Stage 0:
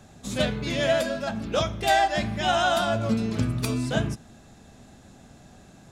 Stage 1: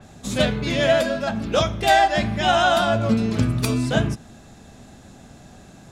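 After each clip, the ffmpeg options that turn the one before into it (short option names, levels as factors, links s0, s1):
-af "adynamicequalizer=threshold=0.00708:dfrequency=4600:dqfactor=0.7:tfrequency=4600:tqfactor=0.7:attack=5:release=100:ratio=0.375:range=2.5:mode=cutabove:tftype=highshelf,volume=1.78"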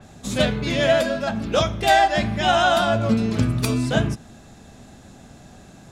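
-af anull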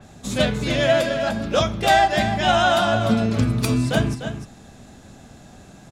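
-af "aecho=1:1:299:0.355"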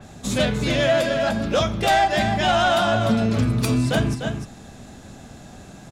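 -filter_complex "[0:a]asplit=2[s0][s1];[s1]alimiter=limit=0.168:level=0:latency=1:release=283,volume=0.891[s2];[s0][s2]amix=inputs=2:normalize=0,asoftclip=type=tanh:threshold=0.398,volume=0.75"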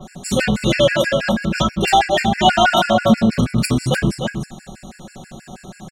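-af "aecho=1:1:5.4:0.92,afftfilt=real='re*gt(sin(2*PI*6.2*pts/sr)*(1-2*mod(floor(b*sr/1024/1400),2)),0)':imag='im*gt(sin(2*PI*6.2*pts/sr)*(1-2*mod(floor(b*sr/1024/1400),2)),0)':win_size=1024:overlap=0.75,volume=1.78"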